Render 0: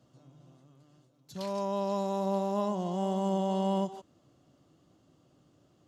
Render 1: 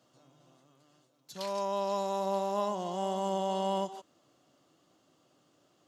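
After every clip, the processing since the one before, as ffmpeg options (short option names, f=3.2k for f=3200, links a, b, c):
-af "highpass=f=670:p=1,volume=3.5dB"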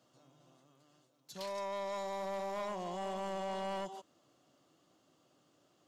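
-af "asoftclip=type=tanh:threshold=-31.5dB,volume=-2.5dB"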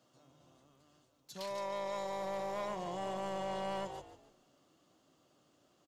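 -filter_complex "[0:a]asplit=5[a][b][c][d][e];[b]adelay=146,afreqshift=-53,volume=-11.5dB[f];[c]adelay=292,afreqshift=-106,volume=-20.4dB[g];[d]adelay=438,afreqshift=-159,volume=-29.2dB[h];[e]adelay=584,afreqshift=-212,volume=-38.1dB[i];[a][f][g][h][i]amix=inputs=5:normalize=0"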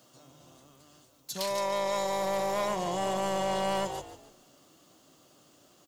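-af "crystalizer=i=1.5:c=0,volume=8.5dB"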